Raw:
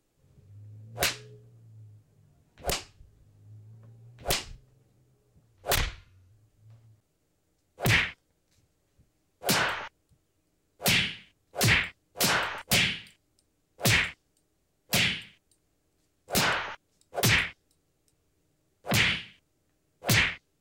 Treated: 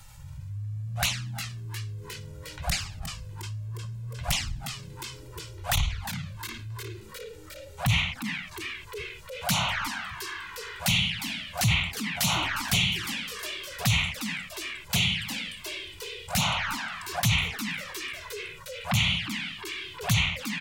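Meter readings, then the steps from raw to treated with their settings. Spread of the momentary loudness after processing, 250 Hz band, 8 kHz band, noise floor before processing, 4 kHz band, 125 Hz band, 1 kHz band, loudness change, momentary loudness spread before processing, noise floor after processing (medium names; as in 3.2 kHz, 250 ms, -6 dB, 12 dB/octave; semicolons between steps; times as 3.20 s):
14 LU, +2.0 dB, +0.5 dB, -74 dBFS, +2.0 dB, +4.5 dB, +1.0 dB, -2.5 dB, 15 LU, -46 dBFS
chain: Chebyshev band-stop 180–830 Hz, order 2; peaking EQ 73 Hz +4 dB 1.4 oct; frequency-shifting echo 357 ms, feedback 57%, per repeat +100 Hz, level -18.5 dB; touch-sensitive flanger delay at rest 2.2 ms, full sweep at -24 dBFS; level flattener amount 50%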